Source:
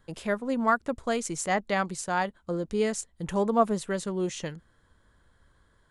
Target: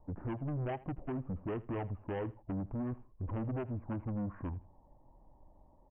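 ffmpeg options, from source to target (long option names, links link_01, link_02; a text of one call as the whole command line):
ffmpeg -i in.wav -filter_complex "[0:a]deesser=0.75,lowpass=frequency=1700:width=0.5412,lowpass=frequency=1700:width=1.3066,acompressor=threshold=-29dB:ratio=20,aresample=11025,asoftclip=type=tanh:threshold=-37dB,aresample=44100,asetrate=24750,aresample=44100,atempo=1.7818,asplit=2[link_01][link_02];[link_02]aecho=0:1:81|162:0.1|0.023[link_03];[link_01][link_03]amix=inputs=2:normalize=0,volume=3.5dB" out.wav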